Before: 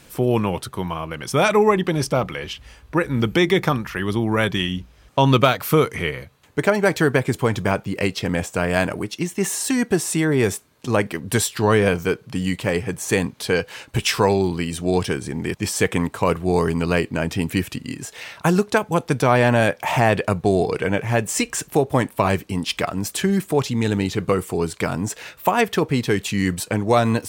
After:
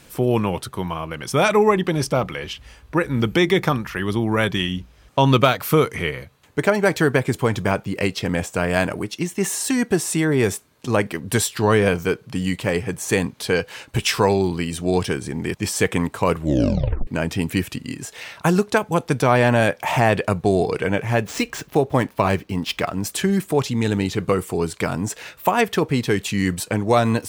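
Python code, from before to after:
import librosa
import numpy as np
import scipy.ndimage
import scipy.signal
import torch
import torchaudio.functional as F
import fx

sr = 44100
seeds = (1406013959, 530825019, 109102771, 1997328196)

y = fx.median_filter(x, sr, points=5, at=(21.14, 23.04))
y = fx.edit(y, sr, fx.tape_stop(start_s=16.37, length_s=0.7), tone=tone)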